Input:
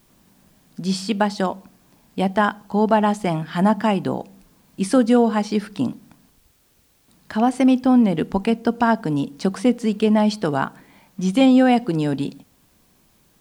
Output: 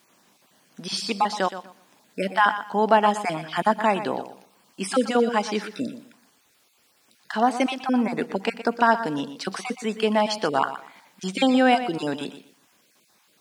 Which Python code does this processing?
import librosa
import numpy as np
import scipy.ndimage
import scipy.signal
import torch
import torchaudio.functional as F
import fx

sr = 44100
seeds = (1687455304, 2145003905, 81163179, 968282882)

y = fx.spec_dropout(x, sr, seeds[0], share_pct=22)
y = fx.weighting(y, sr, curve='A')
y = fx.echo_feedback(y, sr, ms=120, feedback_pct=23, wet_db=-12.0)
y = y * librosa.db_to_amplitude(1.5)